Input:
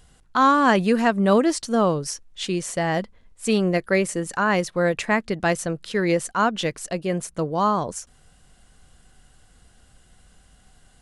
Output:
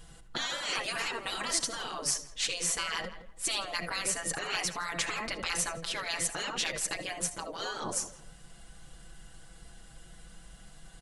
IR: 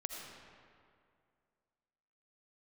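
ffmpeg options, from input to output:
-filter_complex "[0:a]asplit=2[link_01][link_02];[1:a]atrim=start_sample=2205,atrim=end_sample=3528,adelay=6[link_03];[link_02][link_03]afir=irnorm=-1:irlink=0,volume=1.5dB[link_04];[link_01][link_04]amix=inputs=2:normalize=0,afftfilt=real='re*lt(hypot(re,im),0.141)':imag='im*lt(hypot(re,im),0.141)':win_size=1024:overlap=0.75,asplit=2[link_05][link_06];[link_06]adelay=166,lowpass=frequency=1600:poles=1,volume=-12dB,asplit=2[link_07][link_08];[link_08]adelay=166,lowpass=frequency=1600:poles=1,volume=0.25,asplit=2[link_09][link_10];[link_10]adelay=166,lowpass=frequency=1600:poles=1,volume=0.25[link_11];[link_05][link_07][link_09][link_11]amix=inputs=4:normalize=0"

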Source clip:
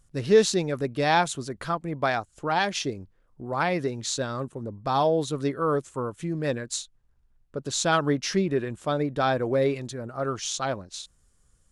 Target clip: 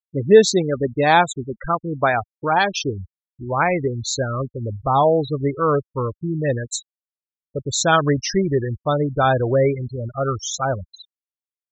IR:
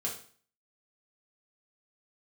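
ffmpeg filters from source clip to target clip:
-af "afftfilt=real='re*gte(hypot(re,im),0.0562)':imag='im*gte(hypot(re,im),0.0562)':win_size=1024:overlap=0.75,asubboost=boost=8:cutoff=73,volume=7.5dB"

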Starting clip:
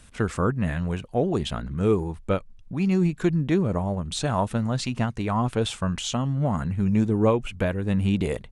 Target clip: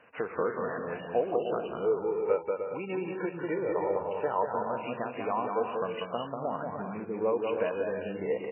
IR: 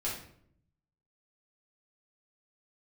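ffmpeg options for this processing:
-filter_complex "[0:a]asettb=1/sr,asplit=3[link_01][link_02][link_03];[link_01]atrim=end=1.854[link_04];[link_02]atrim=start=1.85:end=4.42,asetpts=PTS-STARTPTS,afade=type=in:duration=0.004:curve=qsin,afade=type=out:start_time=2.566:duration=0.004:curve=qsin,aecho=1:1:2.2:0.56,atrim=end_sample=113337[link_05];[link_03]atrim=start=4.416[link_06];[link_04][link_05]acrossfade=duration=0.004:curve1=hsin:curve2=qsin[link_07];[link_07][link_06]acrossfade=duration=0.004:curve1=qsin:curve2=hsin,acompressor=threshold=-29dB:ratio=4,highpass=360,equalizer=frequency=480:width_type=q:width=4:gain=9,equalizer=frequency=700:width_type=q:width=4:gain=4,equalizer=frequency=990:width_type=q:width=4:gain=4,lowpass=frequency=3100:width=0.5412,lowpass=frequency=3100:width=1.3066,aecho=1:1:190|304|372.4|413.4|438.1:0.631|0.398|0.251|0.158|0.1" -ar 8000 -c:a libmp3lame -b:a 8k

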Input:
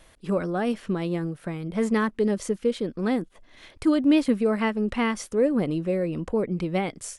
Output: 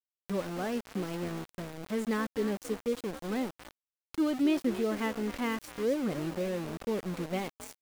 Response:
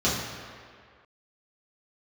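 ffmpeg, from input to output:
-filter_complex "[0:a]atempo=0.92,asplit=2[link_01][link_02];[link_02]asplit=3[link_03][link_04][link_05];[link_03]adelay=264,afreqshift=59,volume=-13dB[link_06];[link_04]adelay=528,afreqshift=118,volume=-23.2dB[link_07];[link_05]adelay=792,afreqshift=177,volume=-33.3dB[link_08];[link_06][link_07][link_08]amix=inputs=3:normalize=0[link_09];[link_01][link_09]amix=inputs=2:normalize=0,aeval=exprs='val(0)*gte(abs(val(0)),0.0355)':channel_layout=same,acompressor=mode=upward:threshold=-34dB:ratio=2.5,volume=-8dB"

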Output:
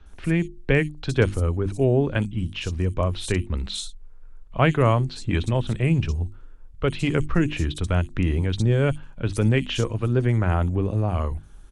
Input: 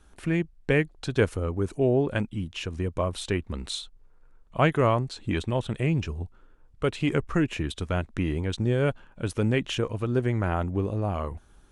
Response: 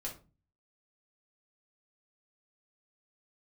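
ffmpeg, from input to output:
-filter_complex "[0:a]aemphasis=mode=reproduction:type=bsi,acrossover=split=210[link_01][link_02];[link_02]crystalizer=i=4.5:c=0[link_03];[link_01][link_03]amix=inputs=2:normalize=0,lowshelf=frequency=170:gain=-3.5,bandreject=frequency=50:width_type=h:width=6,bandreject=frequency=100:width_type=h:width=6,bandreject=frequency=150:width_type=h:width=6,bandreject=frequency=200:width_type=h:width=6,bandreject=frequency=250:width_type=h:width=6,bandreject=frequency=300:width_type=h:width=6,bandreject=frequency=350:width_type=h:width=6,acrossover=split=4500[link_04][link_05];[link_05]adelay=60[link_06];[link_04][link_06]amix=inputs=2:normalize=0"

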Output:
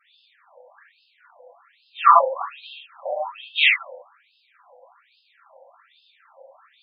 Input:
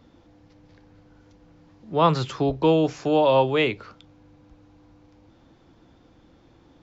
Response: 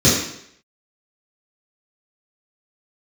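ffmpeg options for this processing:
-filter_complex "[0:a]asplit=3[link_01][link_02][link_03];[link_01]afade=type=out:start_time=2.57:duration=0.02[link_04];[link_02]acompressor=threshold=-31dB:ratio=16,afade=type=in:start_time=2.57:duration=0.02,afade=type=out:start_time=3.54:duration=0.02[link_05];[link_03]afade=type=in:start_time=3.54:duration=0.02[link_06];[link_04][link_05][link_06]amix=inputs=3:normalize=0,highpass=290,highshelf=frequency=5100:gain=-10.5[link_07];[1:a]atrim=start_sample=2205,afade=type=out:start_time=0.19:duration=0.01,atrim=end_sample=8820[link_08];[link_07][link_08]afir=irnorm=-1:irlink=0,afftfilt=real='re*between(b*sr/1024,670*pow(3700/670,0.5+0.5*sin(2*PI*1.2*pts/sr))/1.41,670*pow(3700/670,0.5+0.5*sin(2*PI*1.2*pts/sr))*1.41)':imag='im*between(b*sr/1024,670*pow(3700/670,0.5+0.5*sin(2*PI*1.2*pts/sr))/1.41,670*pow(3700/670,0.5+0.5*sin(2*PI*1.2*pts/sr))*1.41)':win_size=1024:overlap=0.75,volume=-5dB"

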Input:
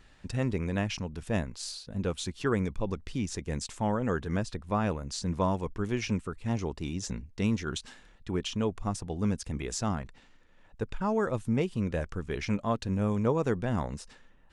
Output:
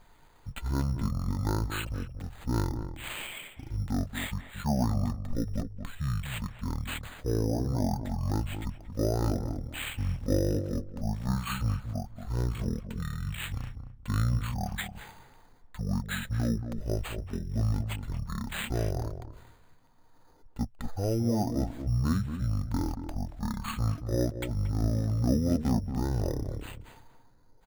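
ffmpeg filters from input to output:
ffmpeg -i in.wav -filter_complex "[0:a]asetrate=23152,aresample=44100,acrusher=samples=8:mix=1:aa=0.000001,asplit=2[link_01][link_02];[link_02]adelay=229,lowpass=frequency=950:poles=1,volume=-8dB,asplit=2[link_03][link_04];[link_04]adelay=229,lowpass=frequency=950:poles=1,volume=0.18,asplit=2[link_05][link_06];[link_06]adelay=229,lowpass=frequency=950:poles=1,volume=0.18[link_07];[link_01][link_03][link_05][link_07]amix=inputs=4:normalize=0" out.wav

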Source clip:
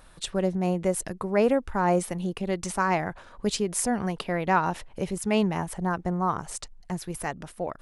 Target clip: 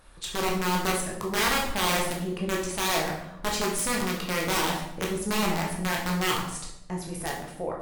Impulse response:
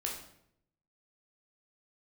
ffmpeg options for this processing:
-filter_complex "[0:a]aeval=exprs='(mod(8.41*val(0)+1,2)-1)/8.41':channel_layout=same[link_01];[1:a]atrim=start_sample=2205,asetrate=40572,aresample=44100[link_02];[link_01][link_02]afir=irnorm=-1:irlink=0,volume=-2dB"

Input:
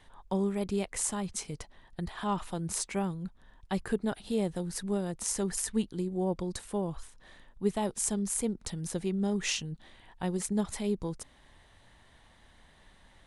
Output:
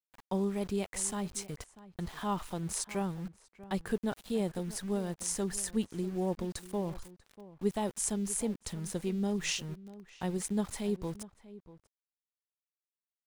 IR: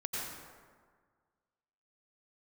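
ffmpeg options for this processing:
-filter_complex "[0:a]aeval=exprs='val(0)*gte(abs(val(0)),0.00562)':channel_layout=same,asplit=2[link_01][link_02];[link_02]adelay=641.4,volume=-17dB,highshelf=frequency=4000:gain=-14.4[link_03];[link_01][link_03]amix=inputs=2:normalize=0,volume=-2dB"

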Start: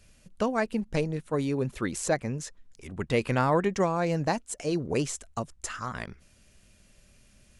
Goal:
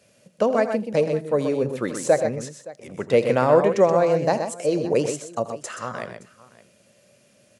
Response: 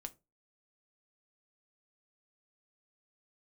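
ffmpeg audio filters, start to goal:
-filter_complex "[0:a]equalizer=frequency=550:width=2:gain=11.5,asplit=2[link_01][link_02];[1:a]atrim=start_sample=2205,asetrate=24696,aresample=44100[link_03];[link_02][link_03]afir=irnorm=-1:irlink=0,volume=-9dB[link_04];[link_01][link_04]amix=inputs=2:normalize=0,deesser=0.45,highpass=frequency=120:width=0.5412,highpass=frequency=120:width=1.3066,aecho=1:1:83|126|569:0.168|0.422|0.1,volume=-1dB"

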